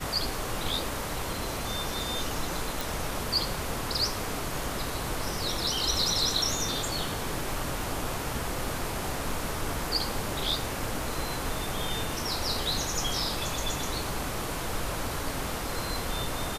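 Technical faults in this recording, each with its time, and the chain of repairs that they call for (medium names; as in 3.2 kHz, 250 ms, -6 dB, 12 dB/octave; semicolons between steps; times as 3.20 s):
2.81 s: pop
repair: de-click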